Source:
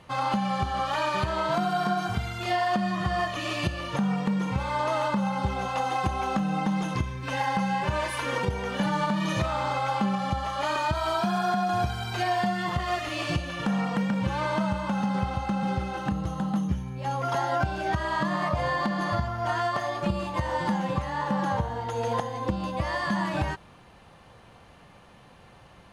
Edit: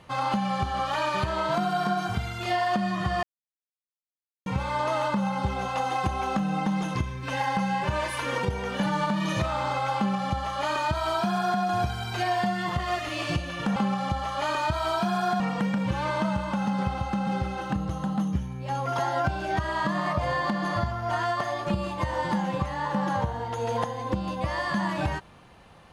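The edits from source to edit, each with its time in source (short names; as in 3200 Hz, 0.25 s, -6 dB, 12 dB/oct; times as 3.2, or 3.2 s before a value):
3.23–4.46 mute
9.97–11.61 copy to 13.76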